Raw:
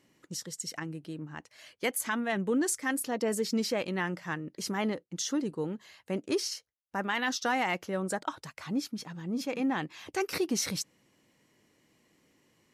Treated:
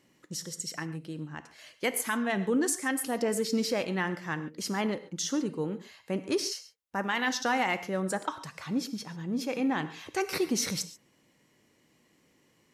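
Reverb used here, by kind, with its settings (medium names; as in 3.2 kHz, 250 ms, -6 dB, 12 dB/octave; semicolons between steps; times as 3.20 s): gated-style reverb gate 160 ms flat, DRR 11 dB; trim +1 dB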